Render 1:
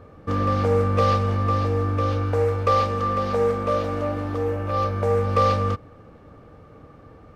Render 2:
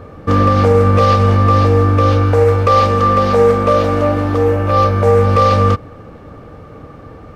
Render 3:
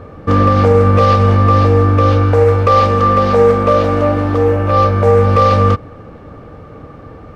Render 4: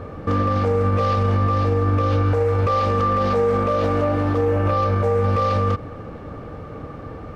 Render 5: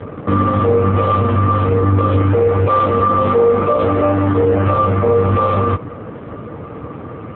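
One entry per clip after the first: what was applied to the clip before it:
loudness maximiser +12.5 dB; trim -1 dB
treble shelf 5.7 kHz -7 dB; trim +1 dB
peak limiter -12 dBFS, peak gain reduction 11 dB
trim +7.5 dB; AMR-NB 5.9 kbps 8 kHz

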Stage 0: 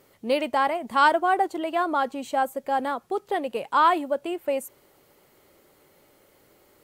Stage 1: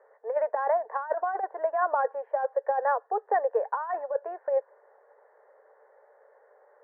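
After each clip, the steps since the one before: Chebyshev band-pass 440–1800 Hz, order 5; peaking EQ 1.3 kHz -11.5 dB 0.2 oct; compressor with a negative ratio -26 dBFS, ratio -0.5; trim +1.5 dB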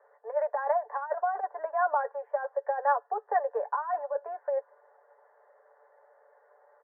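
three-band isolator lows -18 dB, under 540 Hz, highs -14 dB, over 2 kHz; comb 6.9 ms, depth 55%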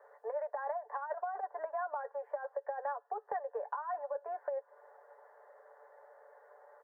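compression 6:1, threshold -38 dBFS, peak gain reduction 17 dB; trim +2.5 dB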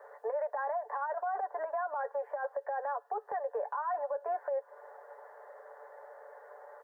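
peak limiter -34.5 dBFS, peak gain reduction 10 dB; trim +7.5 dB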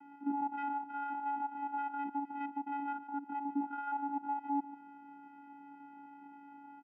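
spectrogram pixelated in time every 50 ms; delay 145 ms -15 dB; vocoder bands 8, square 283 Hz

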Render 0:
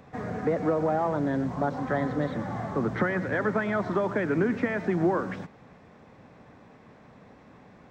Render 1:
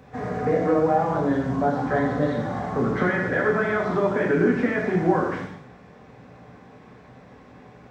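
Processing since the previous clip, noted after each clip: gated-style reverb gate 260 ms falling, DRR -3 dB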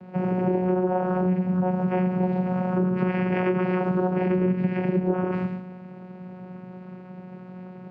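distance through air 120 m; vocoder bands 8, saw 183 Hz; compression 5:1, threshold -29 dBFS, peak gain reduction 13.5 dB; trim +8 dB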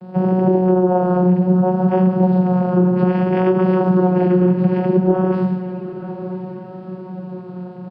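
comb 5.7 ms, depth 76%; vibrato 0.62 Hz 24 cents; echo that smears into a reverb 908 ms, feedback 45%, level -12.5 dB; trim +4 dB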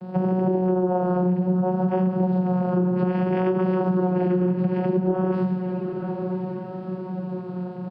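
compression 2.5:1, threshold -22 dBFS, peak gain reduction 8.5 dB

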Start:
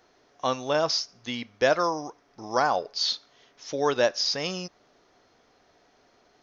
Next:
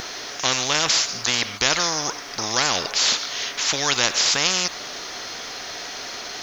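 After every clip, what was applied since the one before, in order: tilt shelf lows -9 dB, about 1.4 kHz; spectrum-flattening compressor 4:1; trim +5 dB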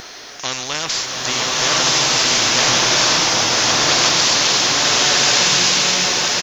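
delay 961 ms -4 dB; swelling reverb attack 1390 ms, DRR -8 dB; trim -2.5 dB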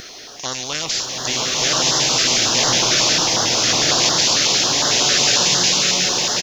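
step-sequenced notch 11 Hz 920–2400 Hz

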